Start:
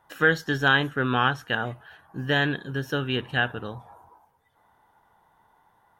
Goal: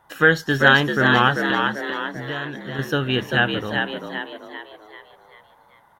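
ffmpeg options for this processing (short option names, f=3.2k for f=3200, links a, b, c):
-filter_complex "[0:a]asettb=1/sr,asplit=3[a][b][c];[a]atrim=end=1.504[d];[b]atrim=start=1.5:end=2.79,asetpts=PTS-STARTPTS,afade=t=in:d=0.004:c=qsin,afade=t=out:st=1.286:d=0.004:c=qsin,acompressor=threshold=-39dB:ratio=2.5[e];[c]atrim=start=2.786[f];[d][e]acrossfade=d=0.004:c1=hsin:c2=qsin[g];[g][f]acrossfade=d=0.004:c1=qsin:c2=hsin,asplit=7[h][i][j][k][l][m][n];[i]adelay=391,afreqshift=72,volume=-4.5dB[o];[j]adelay=782,afreqshift=144,volume=-11.2dB[p];[k]adelay=1173,afreqshift=216,volume=-18dB[q];[l]adelay=1564,afreqshift=288,volume=-24.7dB[r];[m]adelay=1955,afreqshift=360,volume=-31.5dB[s];[n]adelay=2346,afreqshift=432,volume=-38.2dB[t];[h][o][p][q][r][s][t]amix=inputs=7:normalize=0,volume=5dB"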